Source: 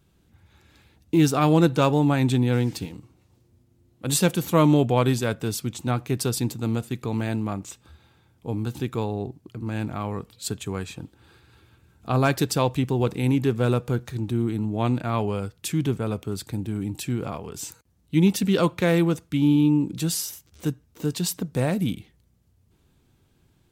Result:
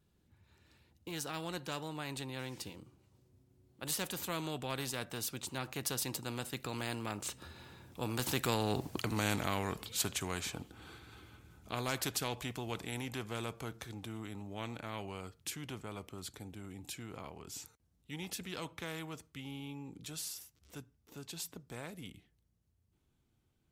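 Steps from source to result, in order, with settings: Doppler pass-by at 8.91 s, 19 m/s, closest 5.3 m; spectrum-flattening compressor 2:1; trim +2 dB

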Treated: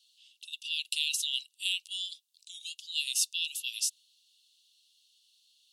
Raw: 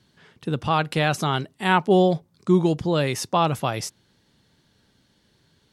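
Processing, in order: dynamic bell 8.8 kHz, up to +3 dB, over -45 dBFS, Q 1.3; rippled Chebyshev high-pass 2.7 kHz, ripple 3 dB; trim +3 dB

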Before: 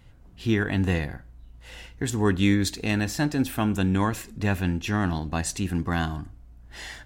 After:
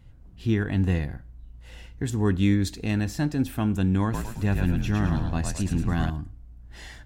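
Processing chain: bass shelf 300 Hz +9 dB; 4.03–6.10 s: frequency-shifting echo 108 ms, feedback 46%, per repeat -51 Hz, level -4 dB; trim -6 dB

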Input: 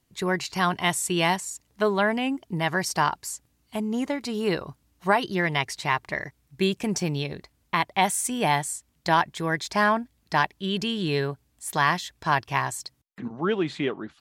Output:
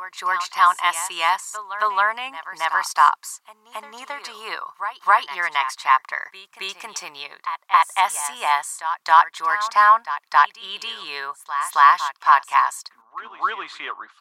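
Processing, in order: resonant high-pass 1.1 kHz, resonance Q 4.9; pre-echo 271 ms -12 dB

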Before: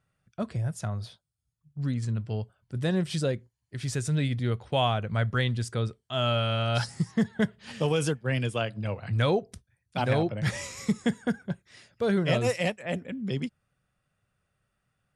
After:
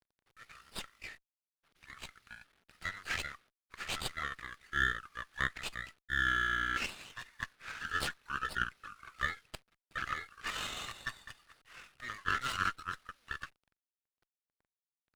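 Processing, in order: bit crusher 11-bit; pitch shift -11 st; steep high-pass 1.2 kHz 72 dB/octave; sliding maximum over 5 samples; trim +4 dB

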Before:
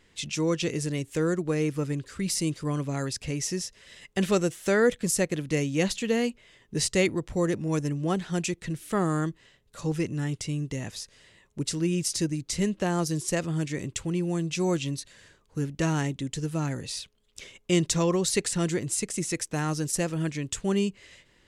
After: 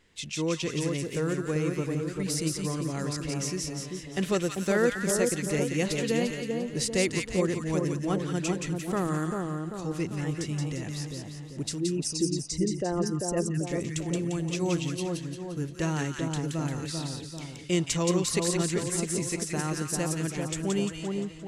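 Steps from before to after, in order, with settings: 11.78–13.65 s: resonances exaggerated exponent 2; two-band feedback delay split 1.2 kHz, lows 392 ms, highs 174 ms, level -3.5 dB; trim -3 dB

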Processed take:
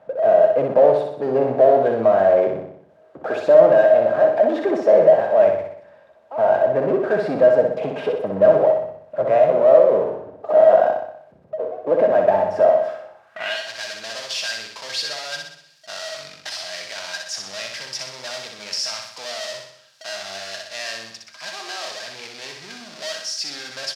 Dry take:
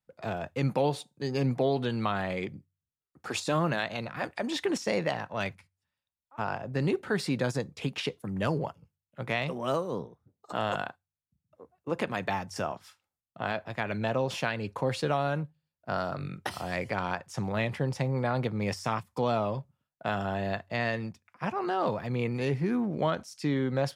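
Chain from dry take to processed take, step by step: treble shelf 4 kHz -10 dB; small resonant body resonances 630/1600 Hz, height 16 dB, ringing for 85 ms; power-law waveshaper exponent 0.5; band-pass sweep 570 Hz -> 5 kHz, 13.06–13.64 s; on a send: feedback delay 62 ms, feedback 54%, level -4.5 dB; on the sum: trim +6.5 dB

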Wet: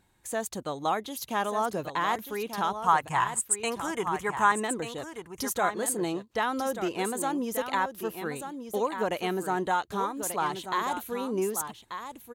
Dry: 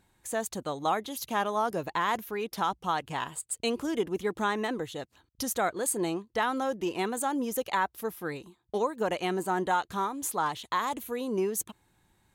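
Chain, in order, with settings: 2.73–4.52 s: graphic EQ 125/250/500/1000/2000/4000/8000 Hz +8/-8/-3/+9/+6/-9/+10 dB; delay 1187 ms -9 dB

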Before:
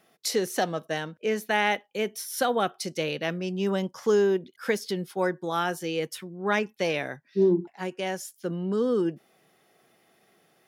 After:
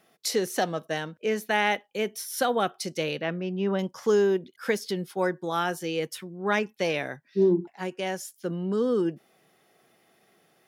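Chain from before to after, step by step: 3.21–3.79 s: low-pass 2.7 kHz 12 dB/octave

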